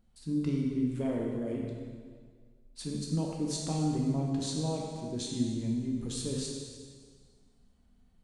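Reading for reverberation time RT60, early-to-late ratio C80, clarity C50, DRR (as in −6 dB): 1.8 s, 2.5 dB, 1.0 dB, −1.5 dB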